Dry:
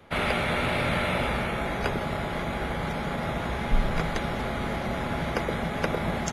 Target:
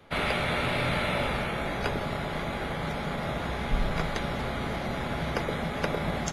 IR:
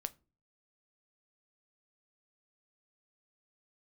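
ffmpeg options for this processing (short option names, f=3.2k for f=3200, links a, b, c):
-filter_complex "[0:a]equalizer=f=4.1k:t=o:w=0.77:g=3[a];[1:a]atrim=start_sample=2205[b];[a][b]afir=irnorm=-1:irlink=0"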